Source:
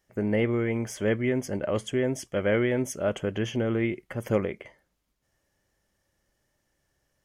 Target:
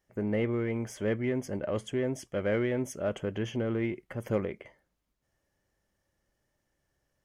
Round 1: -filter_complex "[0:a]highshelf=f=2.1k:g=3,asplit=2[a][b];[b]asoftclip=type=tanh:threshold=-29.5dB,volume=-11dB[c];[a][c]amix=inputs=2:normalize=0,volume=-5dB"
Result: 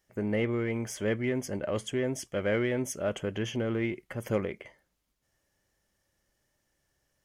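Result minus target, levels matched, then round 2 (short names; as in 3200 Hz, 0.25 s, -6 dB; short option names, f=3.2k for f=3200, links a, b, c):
4000 Hz band +4.0 dB
-filter_complex "[0:a]highshelf=f=2.1k:g=-4,asplit=2[a][b];[b]asoftclip=type=tanh:threshold=-29.5dB,volume=-11dB[c];[a][c]amix=inputs=2:normalize=0,volume=-5dB"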